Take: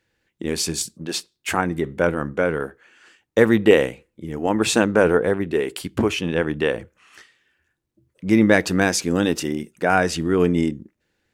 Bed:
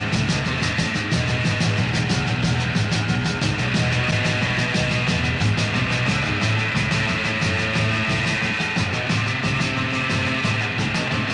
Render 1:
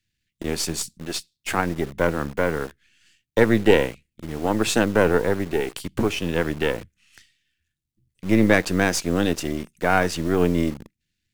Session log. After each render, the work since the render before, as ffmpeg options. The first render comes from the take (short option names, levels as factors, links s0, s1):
-filter_complex "[0:a]aeval=exprs='if(lt(val(0),0),0.447*val(0),val(0))':c=same,acrossover=split=240|2100[s0][s1][s2];[s1]acrusher=bits=6:mix=0:aa=0.000001[s3];[s0][s3][s2]amix=inputs=3:normalize=0"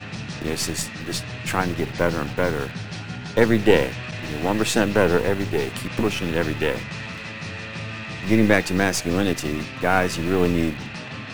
-filter_complex "[1:a]volume=0.266[s0];[0:a][s0]amix=inputs=2:normalize=0"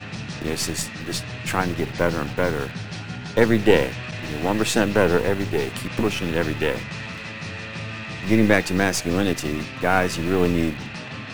-af anull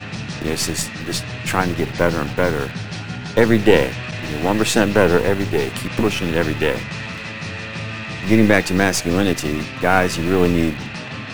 -af "volume=1.58,alimiter=limit=0.891:level=0:latency=1"